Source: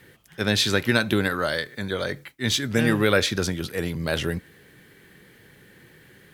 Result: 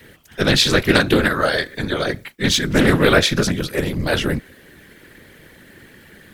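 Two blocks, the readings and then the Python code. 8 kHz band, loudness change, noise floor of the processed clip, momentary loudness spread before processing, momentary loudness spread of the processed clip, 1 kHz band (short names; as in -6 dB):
+5.5 dB, +6.5 dB, -47 dBFS, 9 LU, 9 LU, +7.5 dB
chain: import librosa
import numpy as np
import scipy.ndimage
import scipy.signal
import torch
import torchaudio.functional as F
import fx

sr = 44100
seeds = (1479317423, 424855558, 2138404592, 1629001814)

y = fx.whisperise(x, sr, seeds[0])
y = fx.doppler_dist(y, sr, depth_ms=0.23)
y = y * librosa.db_to_amplitude(6.5)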